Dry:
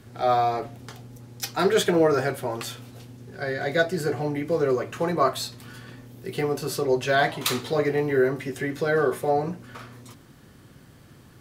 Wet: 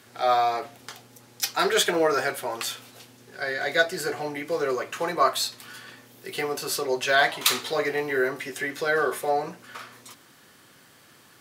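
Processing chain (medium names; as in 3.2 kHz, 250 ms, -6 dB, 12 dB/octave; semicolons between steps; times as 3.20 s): high-pass 1.1 kHz 6 dB/octave; trim +5 dB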